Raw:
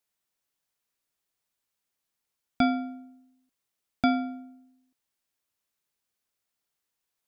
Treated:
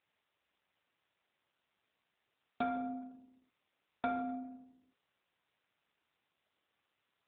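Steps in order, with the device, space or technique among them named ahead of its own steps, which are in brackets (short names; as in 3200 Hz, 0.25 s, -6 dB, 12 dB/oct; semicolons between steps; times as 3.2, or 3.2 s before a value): voicemail (BPF 380–3100 Hz; compressor 10:1, threshold -36 dBFS, peak gain reduction 14 dB; gain +6.5 dB; AMR-NB 7.4 kbps 8000 Hz)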